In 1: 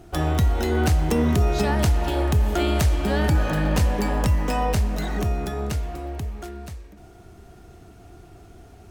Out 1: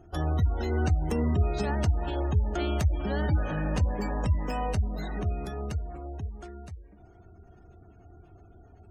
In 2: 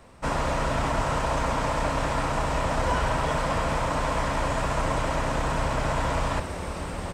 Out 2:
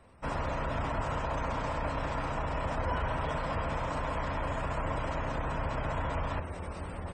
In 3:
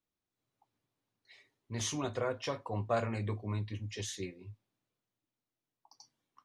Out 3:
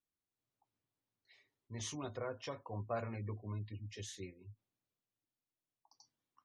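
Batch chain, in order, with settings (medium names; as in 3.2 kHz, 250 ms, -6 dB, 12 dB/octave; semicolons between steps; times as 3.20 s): peaking EQ 85 Hz +6.5 dB 0.32 oct; spectral gate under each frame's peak -30 dB strong; trim -7.5 dB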